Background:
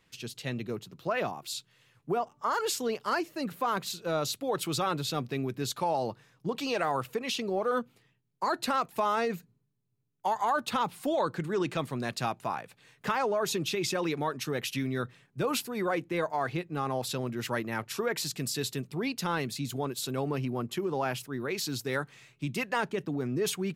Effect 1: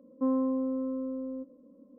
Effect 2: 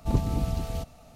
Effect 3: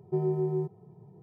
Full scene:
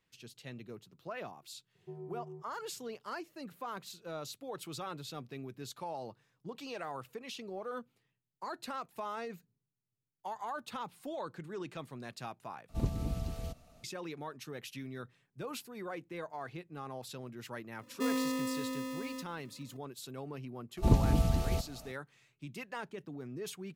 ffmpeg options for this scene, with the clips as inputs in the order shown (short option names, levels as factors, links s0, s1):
-filter_complex "[2:a]asplit=2[s0][s1];[0:a]volume=0.251[s2];[s0]equalizer=f=860:w=6.5:g=-8[s3];[1:a]acrusher=samples=29:mix=1:aa=0.000001[s4];[s2]asplit=2[s5][s6];[s5]atrim=end=12.694[s7];[s3]atrim=end=1.15,asetpts=PTS-STARTPTS,volume=0.398[s8];[s6]atrim=start=13.836[s9];[3:a]atrim=end=1.22,asetpts=PTS-STARTPTS,volume=0.126,afade=t=in:d=0.004:c=hsin,afade=t=out:st=1.216:d=0.004:c=hsin,adelay=1750[s10];[s4]atrim=end=1.98,asetpts=PTS-STARTPTS,volume=0.562,afade=t=in:d=0.004:c=hsin,afade=t=out:st=1.976:d=0.004:c=hsin,adelay=17790[s11];[s1]atrim=end=1.15,asetpts=PTS-STARTPTS,afade=t=in:d=0.004:c=hsin,afade=t=out:st=1.146:d=0.004:c=hsin,adelay=20770[s12];[s7][s8]acrossfade=d=0.004:c1=hsin:c2=hsin[s13];[s13][s9]acrossfade=d=0.004:c1=hsin:c2=hsin[s14];[s14][s10][s11][s12]amix=inputs=4:normalize=0"